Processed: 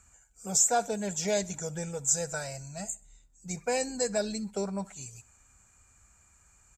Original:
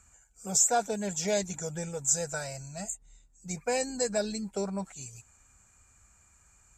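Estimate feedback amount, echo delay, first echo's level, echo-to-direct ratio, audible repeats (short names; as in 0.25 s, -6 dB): 42%, 65 ms, -23.0 dB, -22.0 dB, 2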